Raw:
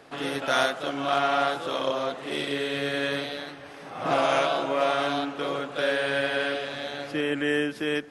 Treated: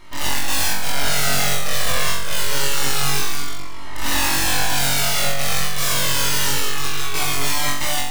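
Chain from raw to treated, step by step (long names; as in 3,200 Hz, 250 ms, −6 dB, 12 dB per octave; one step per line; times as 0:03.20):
loose part that buzzes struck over −44 dBFS, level −24 dBFS
high-pass filter 98 Hz 24 dB per octave
low-shelf EQ 200 Hz +5 dB
hum removal 162.1 Hz, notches 5
full-wave rectification
0:04.64–0:07.19: low-pass with resonance 3,300 Hz, resonance Q 2
wrap-around overflow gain 23.5 dB
flutter between parallel walls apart 3.7 metres, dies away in 0.66 s
flanger whose copies keep moving one way falling 0.26 Hz
level +8.5 dB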